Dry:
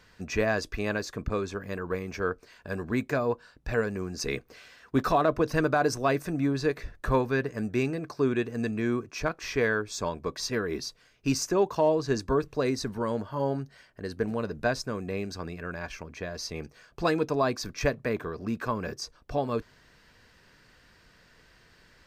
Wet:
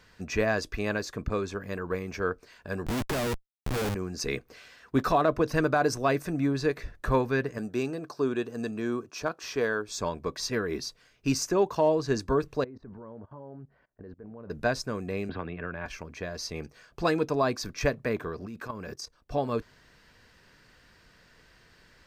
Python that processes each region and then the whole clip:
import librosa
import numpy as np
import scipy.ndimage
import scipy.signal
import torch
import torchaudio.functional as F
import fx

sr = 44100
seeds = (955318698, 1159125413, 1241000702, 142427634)

y = fx.chain(x, sr, fx.low_shelf(hz=63.0, db=9.5),
    fx.schmitt(flips_db=-35.0), at=(2.86, 3.95))
y = fx.chain(y, sr, fx.highpass(hz=250.0, slope=6),
    fx.peak_eq(hz=2100.0, db=-9.5, octaves=0.48), at=(7.58, 9.89))
y = fx.chain(y, sr, fx.lowpass(hz=1100.0, slope=12),
    fx.level_steps(step_db=22), at=(12.64, 14.5))
y = fx.chain(y, sr, fx.ellip_lowpass(hz=3400.0, order=4, stop_db=50),
    fx.band_squash(depth_pct=100), at=(15.29, 15.86))
y = fx.chain(y, sr, fx.high_shelf(hz=5500.0, db=3.0),
    fx.level_steps(step_db=13), at=(18.46, 19.32))